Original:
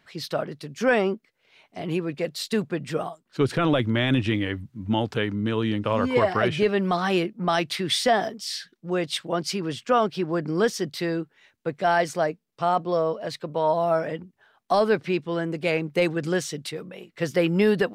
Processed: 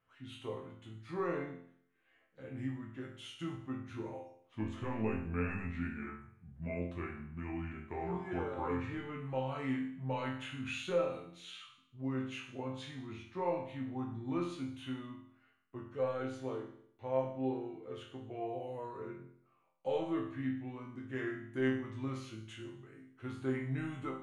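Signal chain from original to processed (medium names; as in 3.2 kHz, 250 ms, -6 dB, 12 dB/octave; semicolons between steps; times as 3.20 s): speed mistake 45 rpm record played at 33 rpm; peaking EQ 5 kHz -11 dB 0.73 oct; chord resonator F2 major, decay 0.64 s; trim +1.5 dB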